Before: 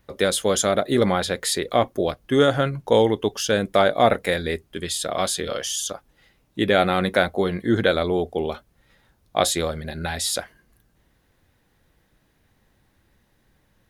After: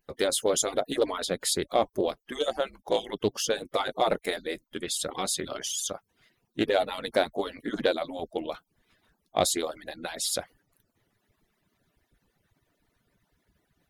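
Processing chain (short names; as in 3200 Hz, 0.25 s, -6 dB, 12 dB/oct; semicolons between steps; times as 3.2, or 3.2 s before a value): median-filter separation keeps percussive; dynamic EQ 1600 Hz, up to -7 dB, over -38 dBFS, Q 1.3; in parallel at -11 dB: hard clip -13 dBFS, distortion -19 dB; on the sum: Doppler distortion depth 0.15 ms; gain -5 dB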